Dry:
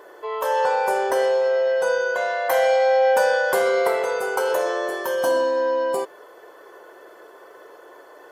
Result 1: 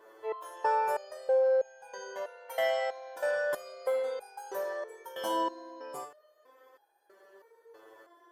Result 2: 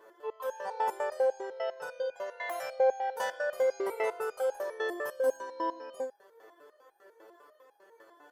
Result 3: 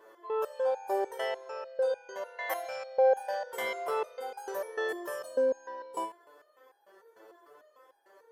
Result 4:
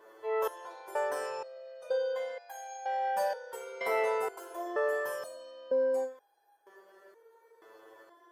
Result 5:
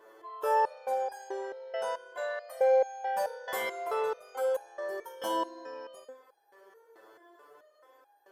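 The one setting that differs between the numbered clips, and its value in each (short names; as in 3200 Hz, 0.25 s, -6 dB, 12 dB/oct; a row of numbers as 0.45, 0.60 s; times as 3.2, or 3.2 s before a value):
stepped resonator, rate: 3.1, 10, 6.7, 2.1, 4.6 Hz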